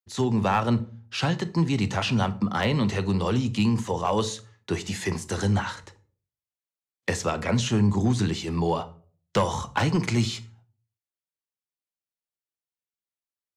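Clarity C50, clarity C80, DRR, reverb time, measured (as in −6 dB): 18.0 dB, 22.5 dB, 11.5 dB, 0.45 s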